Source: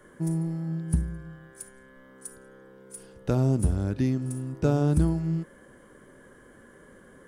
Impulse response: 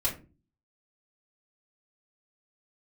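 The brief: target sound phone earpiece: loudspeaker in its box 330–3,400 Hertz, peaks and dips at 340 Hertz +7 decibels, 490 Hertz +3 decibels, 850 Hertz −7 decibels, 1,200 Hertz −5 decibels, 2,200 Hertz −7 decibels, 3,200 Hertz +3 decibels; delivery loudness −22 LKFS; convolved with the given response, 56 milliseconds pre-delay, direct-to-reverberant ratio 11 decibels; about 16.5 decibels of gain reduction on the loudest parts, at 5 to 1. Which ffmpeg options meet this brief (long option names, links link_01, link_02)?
-filter_complex "[0:a]acompressor=threshold=-37dB:ratio=5,asplit=2[link_01][link_02];[1:a]atrim=start_sample=2205,adelay=56[link_03];[link_02][link_03]afir=irnorm=-1:irlink=0,volume=-17.5dB[link_04];[link_01][link_04]amix=inputs=2:normalize=0,highpass=330,equalizer=frequency=340:width_type=q:width=4:gain=7,equalizer=frequency=490:width_type=q:width=4:gain=3,equalizer=frequency=850:width_type=q:width=4:gain=-7,equalizer=frequency=1200:width_type=q:width=4:gain=-5,equalizer=frequency=2200:width_type=q:width=4:gain=-7,equalizer=frequency=3200:width_type=q:width=4:gain=3,lowpass=frequency=3400:width=0.5412,lowpass=frequency=3400:width=1.3066,volume=25dB"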